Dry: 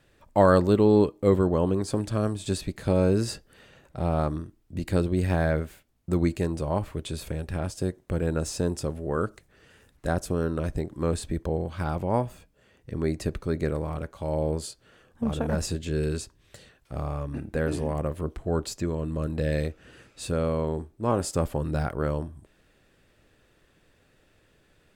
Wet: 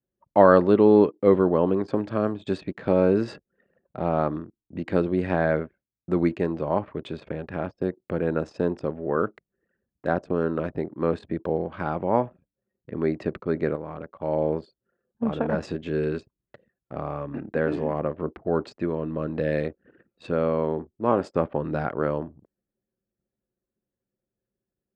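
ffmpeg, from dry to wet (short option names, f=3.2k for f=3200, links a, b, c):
-filter_complex "[0:a]asettb=1/sr,asplit=3[a][b][c];[a]atrim=end=13.754[d];[b]atrim=start=13.75:end=14.23,asetpts=PTS-STARTPTS,afade=t=in:d=0.004:c=qsin,afade=t=out:st=0.476:d=0.004:c=qsin,acompressor=threshold=-32dB:ratio=6:attack=3.2:release=140:knee=1:detection=peak[e];[c]atrim=start=14.226[f];[d][e]acrossfade=d=0.004:c1=hsin:c2=qsin[g];[g][f]acrossfade=d=0.004:c1=qsin:c2=hsin,lowpass=2.4k,anlmdn=0.0251,highpass=200,volume=4dB"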